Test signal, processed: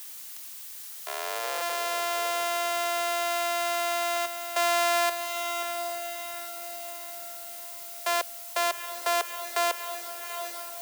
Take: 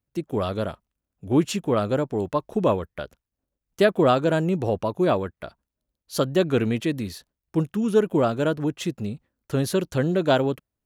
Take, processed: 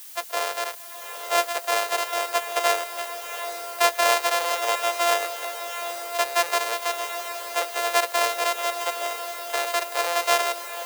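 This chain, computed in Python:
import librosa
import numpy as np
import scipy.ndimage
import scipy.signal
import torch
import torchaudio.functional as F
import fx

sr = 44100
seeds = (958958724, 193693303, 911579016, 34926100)

p1 = np.r_[np.sort(x[:len(x) // 128 * 128].reshape(-1, 128), axis=1).ravel(), x[len(x) // 128 * 128:]]
p2 = scipy.signal.sosfilt(scipy.signal.butter(12, 440.0, 'highpass', fs=sr, output='sos'), p1)
p3 = 10.0 ** (-18.5 / 20.0) * np.tanh(p2 / 10.0 ** (-18.5 / 20.0))
p4 = p2 + (p3 * librosa.db_to_amplitude(-8.5))
p5 = fx.dmg_noise_colour(p4, sr, seeds[0], colour='blue', level_db=-42.0)
y = p5 + fx.echo_diffused(p5, sr, ms=798, feedback_pct=47, wet_db=-9.0, dry=0)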